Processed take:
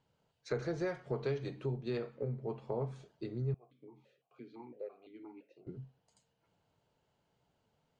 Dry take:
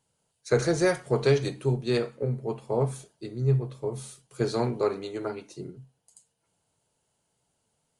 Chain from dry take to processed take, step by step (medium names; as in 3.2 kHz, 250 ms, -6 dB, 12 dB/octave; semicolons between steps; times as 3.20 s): compression 2.5:1, threshold -40 dBFS, peak gain reduction 15.5 dB; distance through air 190 m; 3.54–5.67 s: stepped vowel filter 5.9 Hz; trim +1 dB